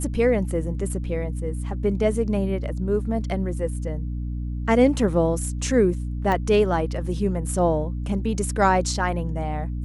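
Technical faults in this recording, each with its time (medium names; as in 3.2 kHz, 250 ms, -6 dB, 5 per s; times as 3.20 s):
hum 60 Hz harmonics 5 -28 dBFS
6.32 s: pop -13 dBFS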